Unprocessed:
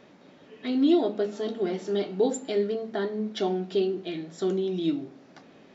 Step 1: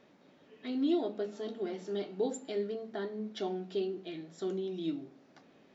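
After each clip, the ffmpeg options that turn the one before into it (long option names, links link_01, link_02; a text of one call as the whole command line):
ffmpeg -i in.wav -af "bandreject=frequency=60:width_type=h:width=6,bandreject=frequency=120:width_type=h:width=6,bandreject=frequency=180:width_type=h:width=6,volume=-8.5dB" out.wav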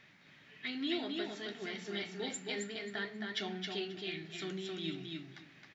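ffmpeg -i in.wav -af "equalizer=frequency=125:width_type=o:width=1:gain=7,equalizer=frequency=250:width_type=o:width=1:gain=-8,equalizer=frequency=500:width_type=o:width=1:gain=-12,equalizer=frequency=1000:width_type=o:width=1:gain=-4,equalizer=frequency=2000:width_type=o:width=1:gain=11,equalizer=frequency=4000:width_type=o:width=1:gain=3,aecho=1:1:268|536|804:0.631|0.114|0.0204,volume=1.5dB" out.wav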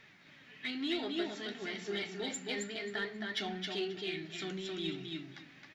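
ffmpeg -i in.wav -filter_complex "[0:a]asplit=2[link_01][link_02];[link_02]asoftclip=type=tanh:threshold=-35.5dB,volume=-7.5dB[link_03];[link_01][link_03]amix=inputs=2:normalize=0,flanger=delay=2.1:depth=2:regen=65:speed=1:shape=triangular,volume=3.5dB" out.wav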